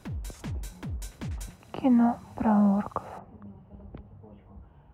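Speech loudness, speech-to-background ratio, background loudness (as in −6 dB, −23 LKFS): −25.5 LKFS, 13.5 dB, −39.0 LKFS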